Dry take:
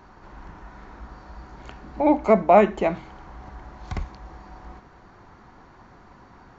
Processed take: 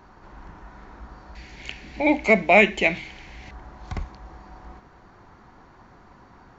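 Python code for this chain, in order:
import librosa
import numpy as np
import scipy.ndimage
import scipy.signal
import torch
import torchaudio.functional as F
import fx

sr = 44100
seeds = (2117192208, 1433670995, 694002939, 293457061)

y = fx.high_shelf_res(x, sr, hz=1700.0, db=10.5, q=3.0, at=(1.35, 3.51))
y = y * 10.0 ** (-1.0 / 20.0)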